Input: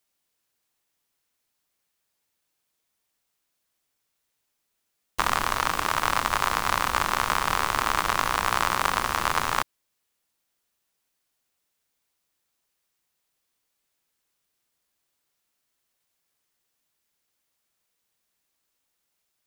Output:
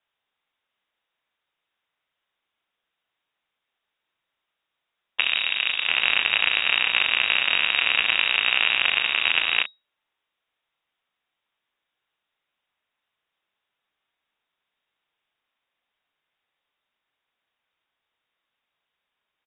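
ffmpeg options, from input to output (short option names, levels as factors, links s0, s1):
-filter_complex "[0:a]asplit=3[s0][s1][s2];[s0]afade=t=out:st=5.2:d=0.02[s3];[s1]highshelf=f=2000:g=-9,afade=t=in:st=5.2:d=0.02,afade=t=out:st=5.86:d=0.02[s4];[s2]afade=t=in:st=5.86:d=0.02[s5];[s3][s4][s5]amix=inputs=3:normalize=0,asplit=2[s6][s7];[s7]adelay=37,volume=0.335[s8];[s6][s8]amix=inputs=2:normalize=0,lowpass=f=3200:t=q:w=0.5098,lowpass=f=3200:t=q:w=0.6013,lowpass=f=3200:t=q:w=0.9,lowpass=f=3200:t=q:w=2.563,afreqshift=-3800,volume=1.41"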